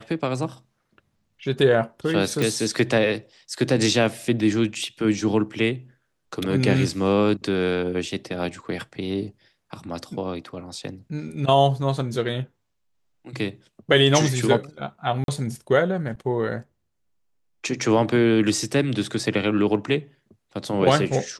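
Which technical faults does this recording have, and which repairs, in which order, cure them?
0:02.42: click
0:15.24–0:15.28: drop-out 42 ms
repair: click removal
repair the gap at 0:15.24, 42 ms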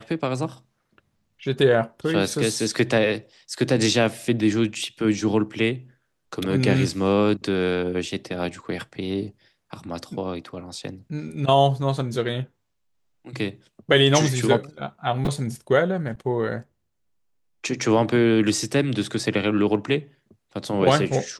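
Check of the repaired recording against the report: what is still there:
0:02.42: click

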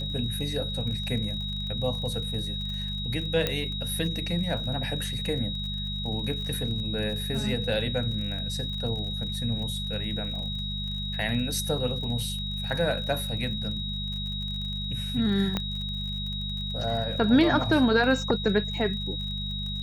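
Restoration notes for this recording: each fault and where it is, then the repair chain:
surface crackle 41 per second −35 dBFS
mains hum 50 Hz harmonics 4 −34 dBFS
whistle 3,800 Hz −33 dBFS
0:03.47: click −11 dBFS
0:15.57: click −13 dBFS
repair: click removal
hum removal 50 Hz, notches 4
notch filter 3,800 Hz, Q 30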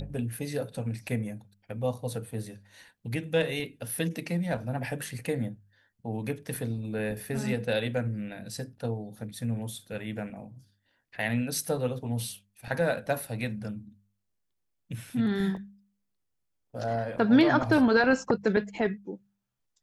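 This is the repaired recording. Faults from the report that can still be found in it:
0:15.57: click

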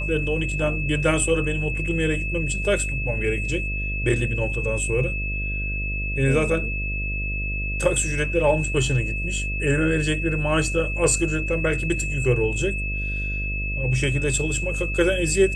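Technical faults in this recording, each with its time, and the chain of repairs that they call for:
mains buzz 50 Hz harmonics 13 −28 dBFS
whistle 2,600 Hz −28 dBFS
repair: notch filter 2,600 Hz, Q 30
hum removal 50 Hz, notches 13

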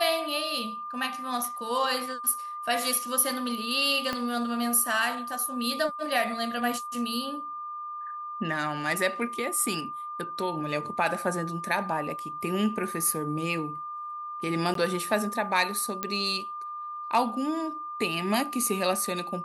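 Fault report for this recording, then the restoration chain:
whistle 1,200 Hz −34 dBFS
0:04.13: click −15 dBFS
0:14.74–0:14.75: drop-out 13 ms
0:16.03: click −13 dBFS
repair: click removal
notch filter 1,200 Hz, Q 30
repair the gap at 0:14.74, 13 ms

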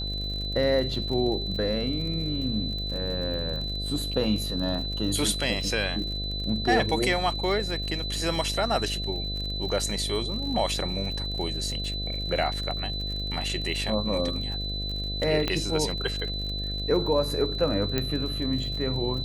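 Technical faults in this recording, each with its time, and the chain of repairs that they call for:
mains buzz 50 Hz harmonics 14 −33 dBFS
surface crackle 50 per second −34 dBFS
whistle 4,000 Hz −32 dBFS
0:15.48: click −12 dBFS
0:17.98: click −11 dBFS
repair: click removal
hum removal 50 Hz, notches 14
notch filter 4,000 Hz, Q 30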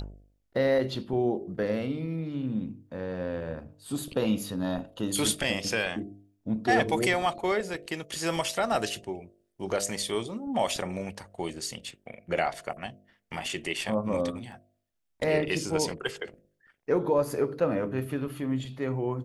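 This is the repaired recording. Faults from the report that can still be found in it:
none of them is left

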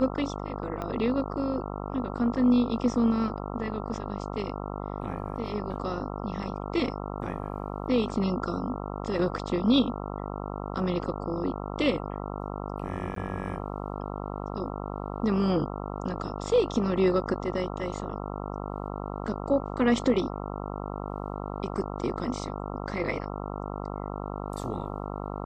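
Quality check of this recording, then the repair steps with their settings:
mains buzz 50 Hz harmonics 27 −35 dBFS
0:00.82: click −21 dBFS
0:13.15–0:13.16: drop-out 13 ms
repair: click removal
hum removal 50 Hz, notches 27
repair the gap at 0:13.15, 13 ms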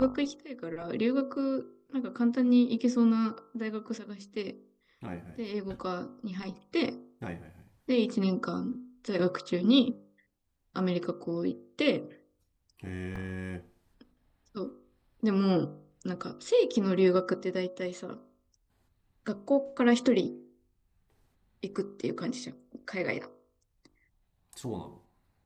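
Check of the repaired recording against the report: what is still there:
0:00.82: click

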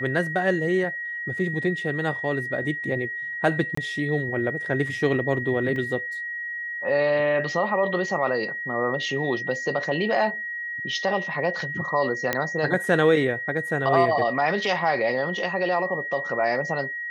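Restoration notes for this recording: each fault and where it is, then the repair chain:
whistle 1,900 Hz −29 dBFS
0:03.75–0:03.77: drop-out 24 ms
0:05.76: drop-out 2.2 ms
0:12.33: click −8 dBFS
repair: click removal
notch filter 1,900 Hz, Q 30
repair the gap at 0:03.75, 24 ms
repair the gap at 0:05.76, 2.2 ms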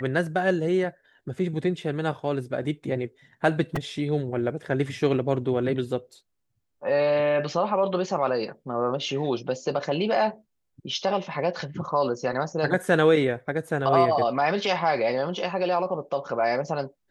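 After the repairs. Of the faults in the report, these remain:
0:12.33: click

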